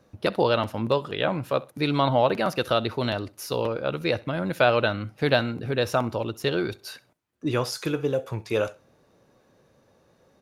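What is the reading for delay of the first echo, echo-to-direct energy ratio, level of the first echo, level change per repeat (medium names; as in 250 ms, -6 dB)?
65 ms, -21.5 dB, -22.0 dB, -10.5 dB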